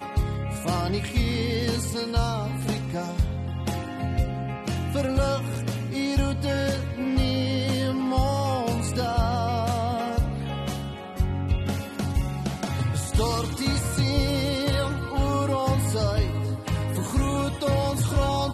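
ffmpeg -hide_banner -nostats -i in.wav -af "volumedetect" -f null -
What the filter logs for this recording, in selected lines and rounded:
mean_volume: -25.2 dB
max_volume: -11.6 dB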